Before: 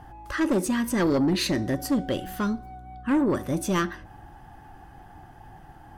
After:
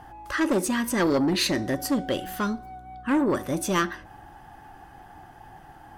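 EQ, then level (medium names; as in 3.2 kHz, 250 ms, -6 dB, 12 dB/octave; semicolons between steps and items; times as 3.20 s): bass shelf 260 Hz -8 dB; +3.0 dB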